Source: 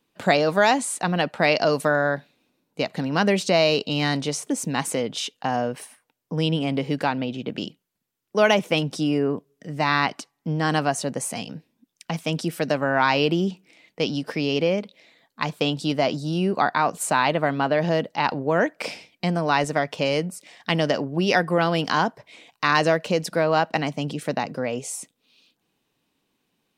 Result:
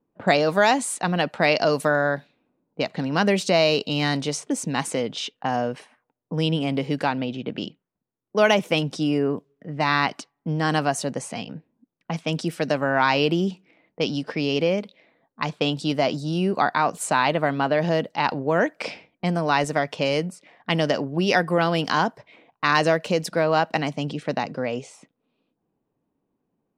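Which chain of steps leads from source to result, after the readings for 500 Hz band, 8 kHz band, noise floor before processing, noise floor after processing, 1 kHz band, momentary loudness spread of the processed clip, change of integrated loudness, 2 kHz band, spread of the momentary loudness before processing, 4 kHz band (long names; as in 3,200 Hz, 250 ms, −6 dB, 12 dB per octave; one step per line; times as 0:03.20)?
0.0 dB, −2.0 dB, −76 dBFS, −79 dBFS, 0.0 dB, 11 LU, 0.0 dB, 0.0 dB, 11 LU, 0.0 dB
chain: low-pass that shuts in the quiet parts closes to 790 Hz, open at −21 dBFS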